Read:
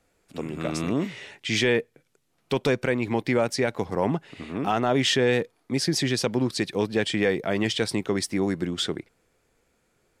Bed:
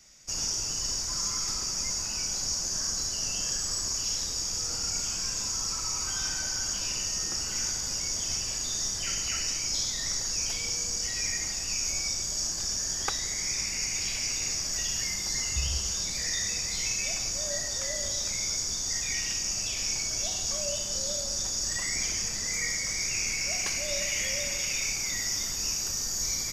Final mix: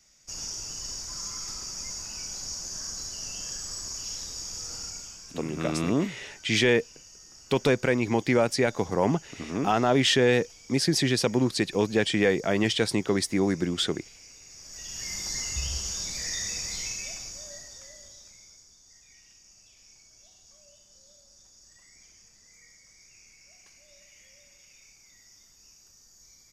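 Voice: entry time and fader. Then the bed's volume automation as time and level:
5.00 s, +0.5 dB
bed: 4.81 s -5.5 dB
5.46 s -19.5 dB
14.46 s -19.5 dB
15.16 s -2 dB
16.71 s -2 dB
18.74 s -25.5 dB

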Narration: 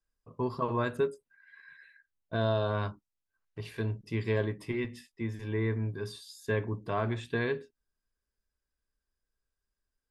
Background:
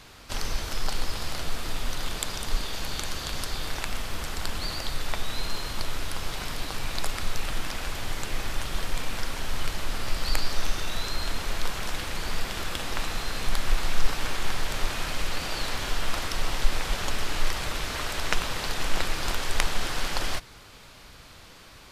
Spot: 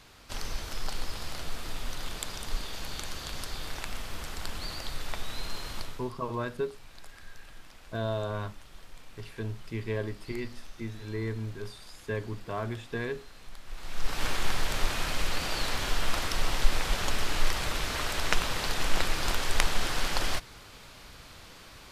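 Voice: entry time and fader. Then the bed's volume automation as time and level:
5.60 s, -3.0 dB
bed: 5.78 s -5.5 dB
6.14 s -20 dB
13.65 s -20 dB
14.23 s -0.5 dB

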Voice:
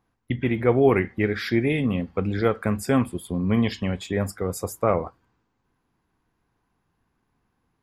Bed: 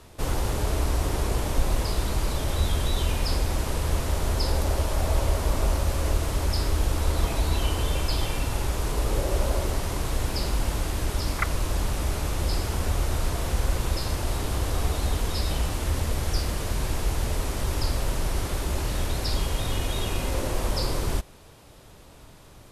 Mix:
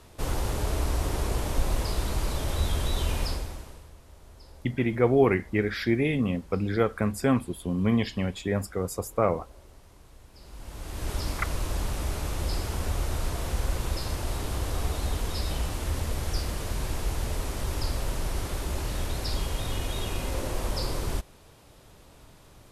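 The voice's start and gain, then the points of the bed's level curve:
4.35 s, -2.5 dB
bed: 3.23 s -2.5 dB
3.94 s -25.5 dB
10.31 s -25.5 dB
11.11 s -3.5 dB

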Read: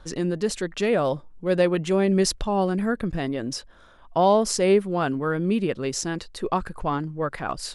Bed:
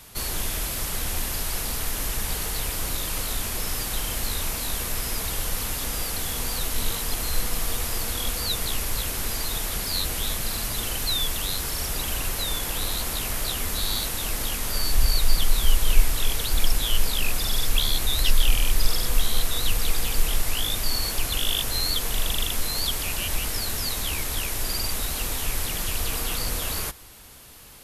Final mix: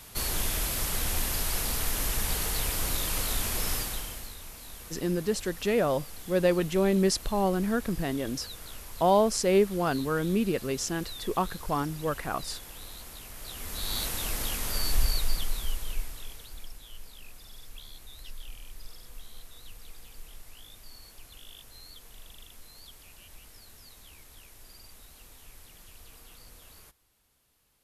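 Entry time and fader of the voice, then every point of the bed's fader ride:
4.85 s, -3.5 dB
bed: 3.74 s -1.5 dB
4.36 s -16.5 dB
13.33 s -16.5 dB
14.02 s -4 dB
14.94 s -4 dB
16.79 s -24 dB

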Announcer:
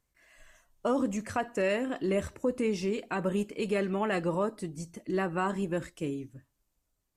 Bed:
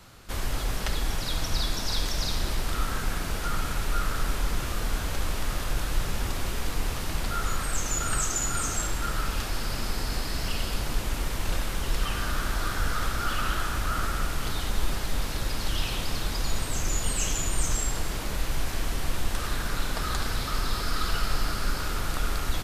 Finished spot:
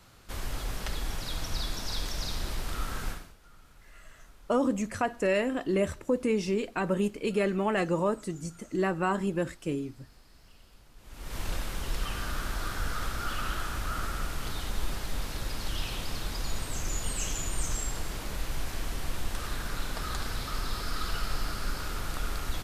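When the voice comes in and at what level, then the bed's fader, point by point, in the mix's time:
3.65 s, +2.0 dB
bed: 3.10 s -5.5 dB
3.36 s -27.5 dB
10.95 s -27.5 dB
11.37 s -5 dB

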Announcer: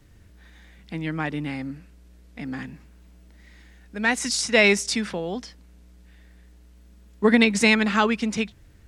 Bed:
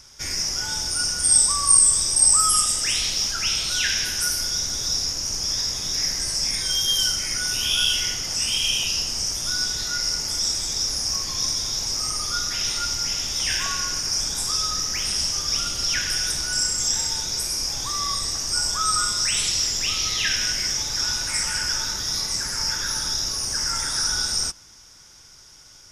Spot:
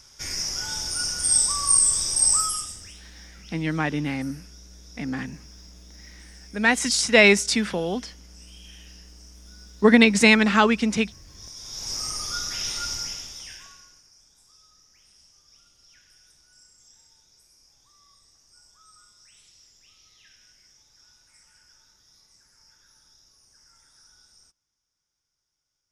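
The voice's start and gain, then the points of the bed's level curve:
2.60 s, +2.5 dB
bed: 2.37 s -3.5 dB
3.01 s -26.5 dB
11.24 s -26.5 dB
11.92 s -4.5 dB
12.97 s -4.5 dB
14.14 s -33 dB

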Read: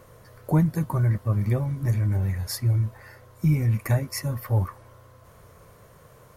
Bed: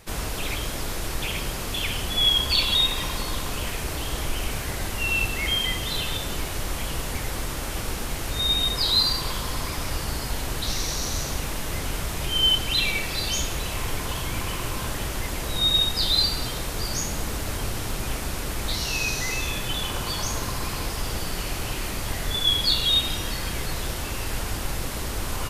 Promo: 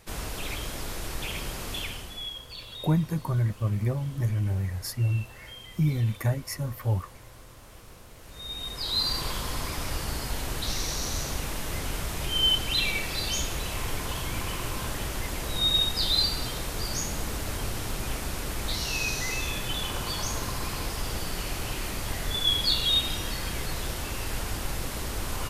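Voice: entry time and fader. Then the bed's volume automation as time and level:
2.35 s, -3.5 dB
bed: 1.76 s -5 dB
2.43 s -20.5 dB
8.15 s -20.5 dB
9.19 s -3 dB

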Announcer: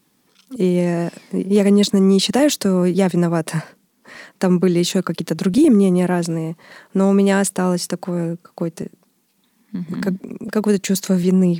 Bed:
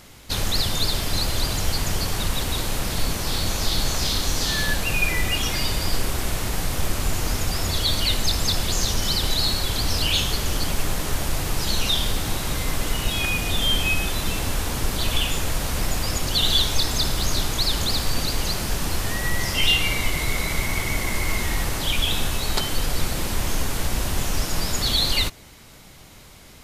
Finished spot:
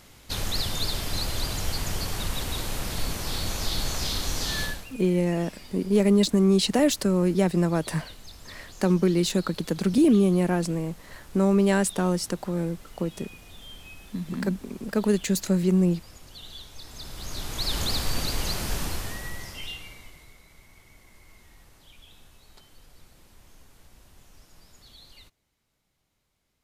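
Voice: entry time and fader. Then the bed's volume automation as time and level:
4.40 s, -6.0 dB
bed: 4.64 s -5.5 dB
4.93 s -23.5 dB
16.72 s -23.5 dB
17.78 s -4 dB
18.80 s -4 dB
20.42 s -30 dB

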